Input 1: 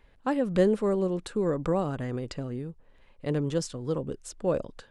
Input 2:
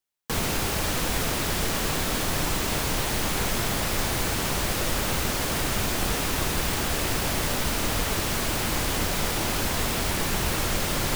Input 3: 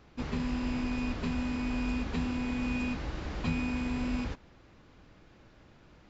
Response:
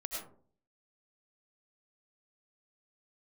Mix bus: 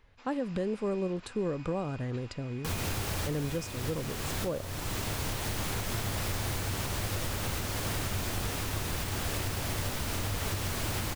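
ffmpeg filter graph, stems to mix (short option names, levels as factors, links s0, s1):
-filter_complex "[0:a]volume=0.631,asplit=2[s0][s1];[1:a]adelay=2350,volume=0.596[s2];[2:a]highpass=860,volume=0.316[s3];[s1]apad=whole_len=595461[s4];[s2][s4]sidechaincompress=threshold=0.0126:ratio=6:attack=16:release=661[s5];[s0][s5]amix=inputs=2:normalize=0,equalizer=f=97:w=3:g=12,alimiter=limit=0.075:level=0:latency=1:release=274,volume=1[s6];[s3][s6]amix=inputs=2:normalize=0"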